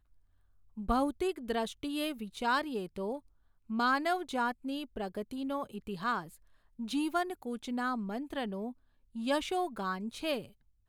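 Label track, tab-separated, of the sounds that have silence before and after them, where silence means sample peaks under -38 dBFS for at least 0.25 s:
0.780000	3.170000	sound
3.700000	6.240000	sound
6.790000	8.710000	sound
9.160000	10.420000	sound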